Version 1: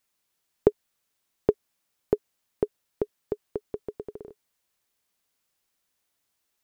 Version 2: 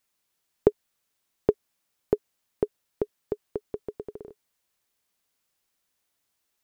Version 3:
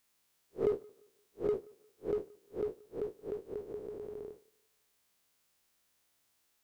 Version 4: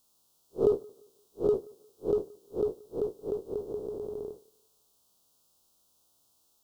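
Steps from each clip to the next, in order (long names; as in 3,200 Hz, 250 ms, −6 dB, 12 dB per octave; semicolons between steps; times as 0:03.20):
no processing that can be heard
spectrum smeared in time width 104 ms; in parallel at −4.5 dB: gain into a clipping stage and back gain 35 dB; on the sum: tape delay 175 ms, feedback 34%, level −24 dB
Butterworth band-reject 2,000 Hz, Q 0.87; level +6.5 dB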